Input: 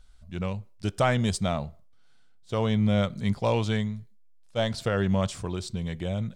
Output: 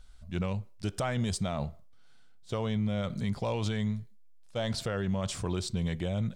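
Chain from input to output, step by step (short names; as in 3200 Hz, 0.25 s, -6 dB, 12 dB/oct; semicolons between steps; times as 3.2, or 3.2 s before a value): limiter -24.5 dBFS, peak gain reduction 11 dB; gain +1.5 dB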